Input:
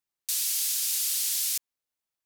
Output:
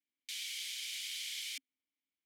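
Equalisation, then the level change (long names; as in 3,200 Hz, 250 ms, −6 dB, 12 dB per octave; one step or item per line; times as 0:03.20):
formant filter i
+10.0 dB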